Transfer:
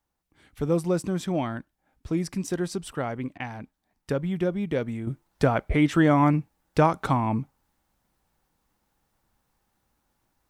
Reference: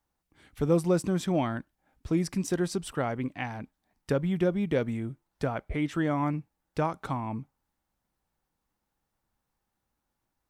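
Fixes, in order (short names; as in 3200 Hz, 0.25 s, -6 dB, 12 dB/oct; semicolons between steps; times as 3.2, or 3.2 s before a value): interpolate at 3.38, 18 ms; gain 0 dB, from 5.07 s -8.5 dB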